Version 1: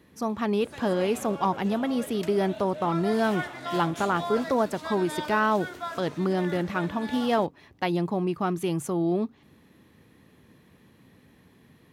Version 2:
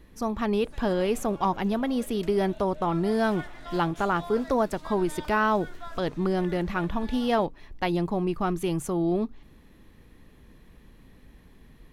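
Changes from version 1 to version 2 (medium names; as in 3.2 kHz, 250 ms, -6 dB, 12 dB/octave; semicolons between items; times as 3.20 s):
background -8.0 dB; master: remove high-pass 90 Hz 24 dB/octave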